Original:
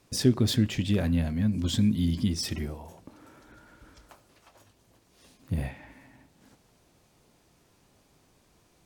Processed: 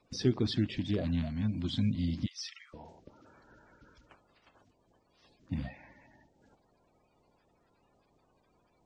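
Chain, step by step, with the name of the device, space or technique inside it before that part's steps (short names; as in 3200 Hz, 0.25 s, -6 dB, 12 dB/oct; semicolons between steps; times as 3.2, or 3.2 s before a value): 2.26–2.74 Chebyshev high-pass 1100 Hz, order 8; clip after many re-uploads (LPF 5600 Hz 24 dB/oct; bin magnitudes rounded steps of 30 dB); gain -5.5 dB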